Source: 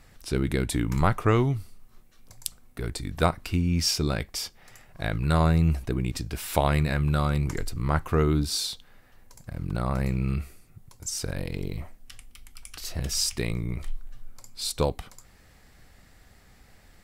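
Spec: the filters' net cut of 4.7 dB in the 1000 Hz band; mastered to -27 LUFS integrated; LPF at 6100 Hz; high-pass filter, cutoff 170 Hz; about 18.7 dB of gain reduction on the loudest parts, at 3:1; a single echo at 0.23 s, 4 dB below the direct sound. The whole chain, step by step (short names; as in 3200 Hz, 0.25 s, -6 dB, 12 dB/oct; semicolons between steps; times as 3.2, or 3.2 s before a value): HPF 170 Hz; LPF 6100 Hz; bell 1000 Hz -6.5 dB; compressor 3:1, threshold -46 dBFS; echo 0.23 s -4 dB; gain +18 dB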